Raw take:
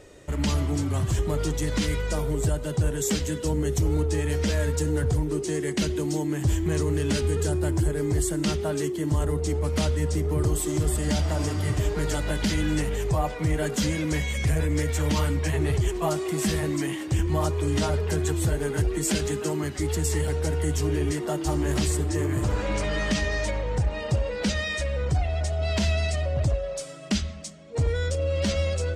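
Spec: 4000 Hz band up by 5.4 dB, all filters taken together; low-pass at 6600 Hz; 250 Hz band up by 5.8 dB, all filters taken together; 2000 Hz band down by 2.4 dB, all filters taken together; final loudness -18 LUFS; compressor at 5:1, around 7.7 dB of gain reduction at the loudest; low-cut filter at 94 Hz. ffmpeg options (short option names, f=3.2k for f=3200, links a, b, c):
-af "highpass=94,lowpass=6.6k,equalizer=f=250:t=o:g=8.5,equalizer=f=2k:t=o:g=-5.5,equalizer=f=4k:t=o:g=9,acompressor=threshold=-24dB:ratio=5,volume=10.5dB"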